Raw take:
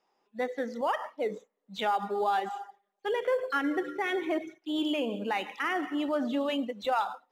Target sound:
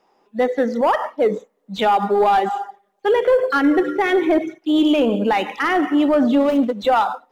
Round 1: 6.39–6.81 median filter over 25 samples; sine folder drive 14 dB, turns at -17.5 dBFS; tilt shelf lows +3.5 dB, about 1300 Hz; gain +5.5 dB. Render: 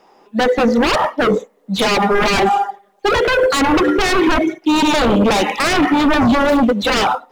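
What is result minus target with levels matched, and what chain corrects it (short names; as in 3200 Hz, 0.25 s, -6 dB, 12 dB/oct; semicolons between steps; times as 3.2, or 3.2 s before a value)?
sine folder: distortion +25 dB
6.39–6.81 median filter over 25 samples; sine folder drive 3 dB, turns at -17.5 dBFS; tilt shelf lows +3.5 dB, about 1300 Hz; gain +5.5 dB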